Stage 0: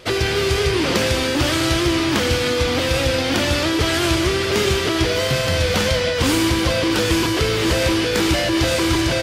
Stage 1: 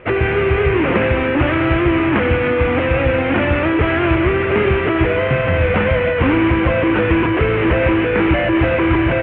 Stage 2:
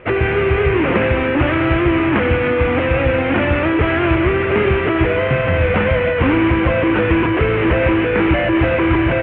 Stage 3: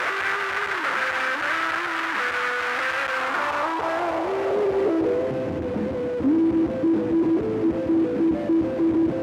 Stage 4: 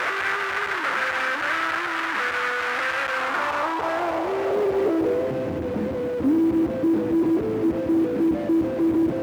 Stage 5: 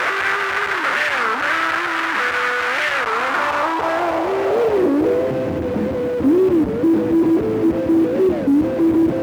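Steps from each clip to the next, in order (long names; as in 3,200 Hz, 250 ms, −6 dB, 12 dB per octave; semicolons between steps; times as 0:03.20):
Butterworth low-pass 2,600 Hz 48 dB per octave; level +4 dB
no processing that can be heard
sign of each sample alone; band-pass filter sweep 1,500 Hz → 280 Hz, 0:03.04–0:05.57
log-companded quantiser 8 bits
wow of a warped record 33 1/3 rpm, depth 250 cents; level +5.5 dB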